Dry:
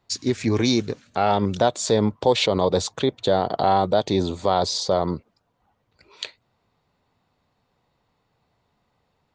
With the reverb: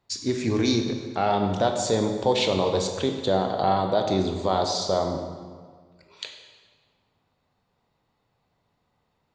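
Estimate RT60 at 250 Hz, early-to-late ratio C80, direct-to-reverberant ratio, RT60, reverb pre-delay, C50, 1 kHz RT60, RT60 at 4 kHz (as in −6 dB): 1.7 s, 7.0 dB, 4.0 dB, 1.7 s, 18 ms, 6.0 dB, 1.6 s, 1.3 s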